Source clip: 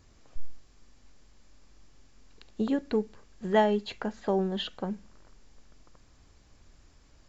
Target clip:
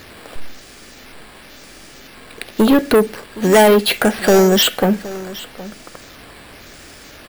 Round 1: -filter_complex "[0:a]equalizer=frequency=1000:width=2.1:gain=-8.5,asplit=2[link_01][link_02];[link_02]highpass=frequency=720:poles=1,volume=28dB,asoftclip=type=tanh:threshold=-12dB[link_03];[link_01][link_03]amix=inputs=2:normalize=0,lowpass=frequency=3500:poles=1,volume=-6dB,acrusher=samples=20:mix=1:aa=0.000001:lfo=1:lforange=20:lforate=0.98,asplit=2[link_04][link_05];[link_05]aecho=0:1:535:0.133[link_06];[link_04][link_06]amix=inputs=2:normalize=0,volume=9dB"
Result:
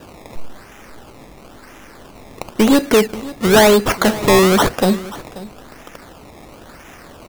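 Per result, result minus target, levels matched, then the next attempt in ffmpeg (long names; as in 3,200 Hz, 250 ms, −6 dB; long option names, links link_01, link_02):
sample-and-hold swept by an LFO: distortion +10 dB; echo 233 ms early
-filter_complex "[0:a]equalizer=frequency=1000:width=2.1:gain=-8.5,asplit=2[link_01][link_02];[link_02]highpass=frequency=720:poles=1,volume=28dB,asoftclip=type=tanh:threshold=-12dB[link_03];[link_01][link_03]amix=inputs=2:normalize=0,lowpass=frequency=3500:poles=1,volume=-6dB,acrusher=samples=5:mix=1:aa=0.000001:lfo=1:lforange=5:lforate=0.98,asplit=2[link_04][link_05];[link_05]aecho=0:1:535:0.133[link_06];[link_04][link_06]amix=inputs=2:normalize=0,volume=9dB"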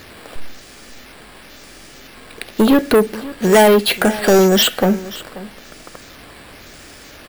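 echo 233 ms early
-filter_complex "[0:a]equalizer=frequency=1000:width=2.1:gain=-8.5,asplit=2[link_01][link_02];[link_02]highpass=frequency=720:poles=1,volume=28dB,asoftclip=type=tanh:threshold=-12dB[link_03];[link_01][link_03]amix=inputs=2:normalize=0,lowpass=frequency=3500:poles=1,volume=-6dB,acrusher=samples=5:mix=1:aa=0.000001:lfo=1:lforange=5:lforate=0.98,asplit=2[link_04][link_05];[link_05]aecho=0:1:768:0.133[link_06];[link_04][link_06]amix=inputs=2:normalize=0,volume=9dB"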